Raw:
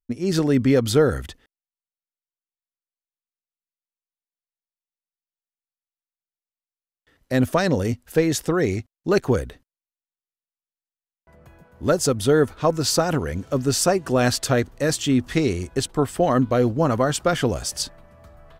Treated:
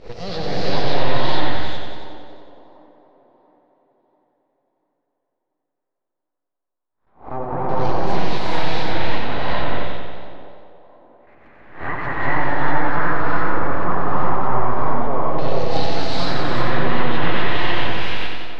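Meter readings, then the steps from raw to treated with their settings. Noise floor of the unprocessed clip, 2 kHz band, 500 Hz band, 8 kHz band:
under -85 dBFS, +6.0 dB, -3.5 dB, under -15 dB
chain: reverse spectral sustain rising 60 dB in 0.31 s; in parallel at -3 dB: peak limiter -15.5 dBFS, peak gain reduction 10 dB; on the sum: full-wave rectifier; peaking EQ 4.1 kHz +5 dB 0.3 oct; LFO low-pass saw down 0.13 Hz 830–4900 Hz; on a send: feedback echo behind a band-pass 688 ms, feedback 40%, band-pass 470 Hz, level -19 dB; on the sum: low-pass that closes with the level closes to 2.5 kHz, closed at -11 dBFS; compression 1.5:1, threshold -21 dBFS, peak gain reduction 5 dB; gated-style reverb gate 480 ms rising, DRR -5.5 dB; modulated delay 91 ms, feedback 70%, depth 57 cents, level -5 dB; trim -6.5 dB

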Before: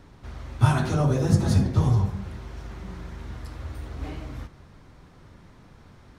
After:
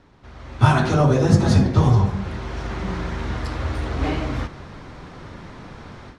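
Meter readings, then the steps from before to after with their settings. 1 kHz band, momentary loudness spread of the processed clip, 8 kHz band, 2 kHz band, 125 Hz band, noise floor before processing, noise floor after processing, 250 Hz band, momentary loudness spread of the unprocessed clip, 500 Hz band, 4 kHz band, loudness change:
+8.5 dB, 23 LU, +3.5 dB, +9.0 dB, +4.5 dB, -52 dBFS, -43 dBFS, +6.5 dB, 18 LU, +8.5 dB, +7.5 dB, +3.5 dB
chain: bass shelf 180 Hz -7 dB; level rider gain up to 15.5 dB; distance through air 70 m

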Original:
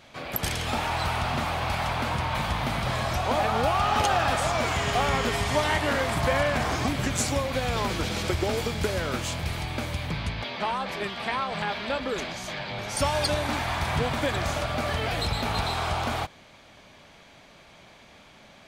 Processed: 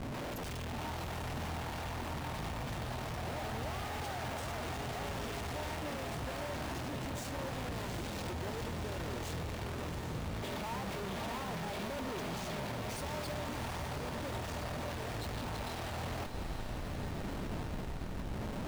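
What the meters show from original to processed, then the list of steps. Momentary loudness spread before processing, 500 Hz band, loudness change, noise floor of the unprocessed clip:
7 LU, -12.0 dB, -12.5 dB, -52 dBFS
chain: tremolo 0.75 Hz, depth 44%; band-stop 510 Hz, Q 17; saturation -29 dBFS, distortion -9 dB; peaking EQ 1.7 kHz -12 dB 2 oct; compression 2.5:1, threshold -45 dBFS, peak gain reduction 9 dB; Schmitt trigger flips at -53.5 dBFS; treble shelf 4.1 kHz -6 dB; feedback comb 920 Hz, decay 0.33 s, mix 60%; echo that smears into a reverb 781 ms, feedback 66%, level -7 dB; trim +12.5 dB

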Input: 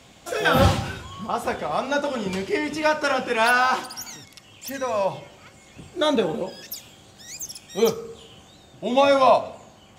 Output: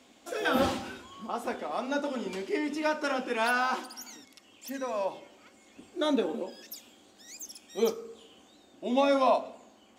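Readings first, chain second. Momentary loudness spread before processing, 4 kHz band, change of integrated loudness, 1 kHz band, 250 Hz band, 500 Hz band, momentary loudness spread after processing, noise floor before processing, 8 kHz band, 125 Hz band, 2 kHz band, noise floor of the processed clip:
19 LU, -9.0 dB, -7.5 dB, -8.5 dB, -4.5 dB, -7.5 dB, 18 LU, -51 dBFS, -9.0 dB, under -15 dB, -9.0 dB, -59 dBFS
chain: resonant low shelf 190 Hz -9.5 dB, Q 3; trim -9 dB

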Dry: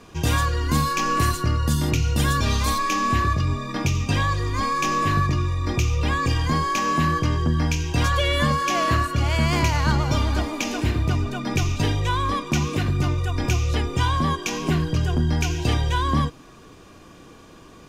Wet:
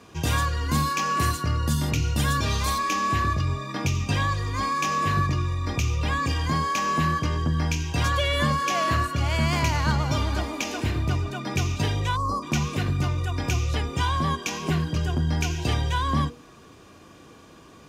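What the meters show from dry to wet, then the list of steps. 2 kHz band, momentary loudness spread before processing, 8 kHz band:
-2.0 dB, 4 LU, -2.0 dB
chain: high-pass 51 Hz; hum notches 60/120/180/240/300/360/420/480 Hz; time-frequency box 12.16–12.43 s, 1.4–4.1 kHz -29 dB; trim -2 dB

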